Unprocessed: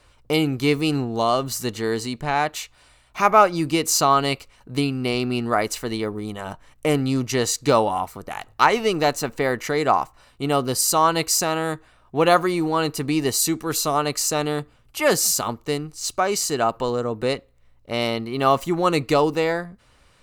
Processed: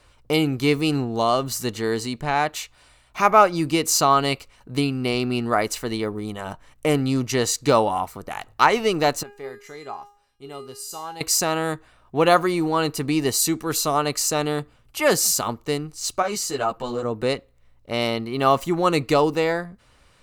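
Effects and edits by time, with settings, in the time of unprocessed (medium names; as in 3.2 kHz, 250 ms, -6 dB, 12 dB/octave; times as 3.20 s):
9.23–11.21 s: feedback comb 410 Hz, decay 0.44 s, mix 90%
16.22–17.03 s: three-phase chorus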